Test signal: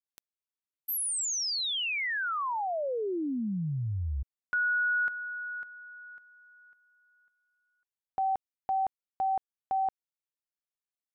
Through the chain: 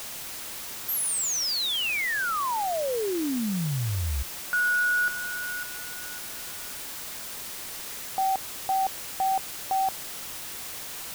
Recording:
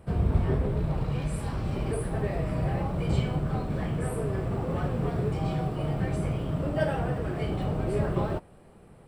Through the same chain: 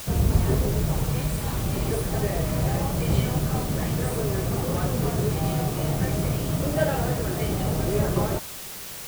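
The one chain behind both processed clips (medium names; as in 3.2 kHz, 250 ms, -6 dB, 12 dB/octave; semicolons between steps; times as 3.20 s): added noise white -41 dBFS; trim +3.5 dB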